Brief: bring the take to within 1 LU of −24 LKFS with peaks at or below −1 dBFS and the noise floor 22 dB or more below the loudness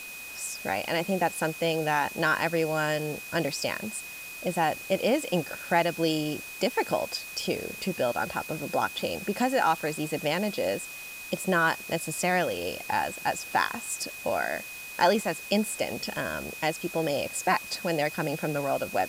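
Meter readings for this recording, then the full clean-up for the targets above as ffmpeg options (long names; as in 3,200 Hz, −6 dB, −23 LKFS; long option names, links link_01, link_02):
interfering tone 2,500 Hz; level of the tone −40 dBFS; background noise floor −41 dBFS; target noise floor −51 dBFS; integrated loudness −28.5 LKFS; sample peak −9.0 dBFS; target loudness −24.0 LKFS
→ -af "bandreject=frequency=2500:width=30"
-af "afftdn=noise_reduction=10:noise_floor=-41"
-af "volume=4.5dB"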